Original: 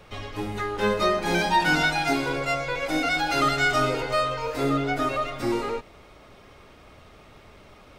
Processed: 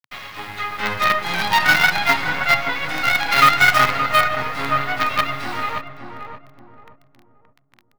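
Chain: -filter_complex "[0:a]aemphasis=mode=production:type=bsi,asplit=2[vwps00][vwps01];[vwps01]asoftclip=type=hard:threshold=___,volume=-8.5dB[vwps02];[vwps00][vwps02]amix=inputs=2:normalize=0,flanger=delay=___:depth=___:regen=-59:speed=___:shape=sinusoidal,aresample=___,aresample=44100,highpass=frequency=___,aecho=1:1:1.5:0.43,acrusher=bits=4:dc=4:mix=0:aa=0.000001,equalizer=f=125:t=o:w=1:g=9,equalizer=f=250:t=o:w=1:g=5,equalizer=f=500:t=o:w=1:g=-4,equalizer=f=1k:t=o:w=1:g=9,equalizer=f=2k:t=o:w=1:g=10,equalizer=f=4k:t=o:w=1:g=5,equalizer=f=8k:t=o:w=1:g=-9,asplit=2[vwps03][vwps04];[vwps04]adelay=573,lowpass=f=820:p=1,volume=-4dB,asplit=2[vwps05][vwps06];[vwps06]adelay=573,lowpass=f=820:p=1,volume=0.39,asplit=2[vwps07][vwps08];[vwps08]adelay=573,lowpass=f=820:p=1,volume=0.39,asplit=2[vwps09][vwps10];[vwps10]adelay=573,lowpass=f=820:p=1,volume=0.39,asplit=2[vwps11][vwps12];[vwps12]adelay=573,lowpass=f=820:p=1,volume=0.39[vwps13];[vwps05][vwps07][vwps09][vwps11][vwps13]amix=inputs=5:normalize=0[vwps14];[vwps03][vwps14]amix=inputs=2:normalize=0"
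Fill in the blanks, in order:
-21.5dB, 3.8, 3.6, 1, 22050, 55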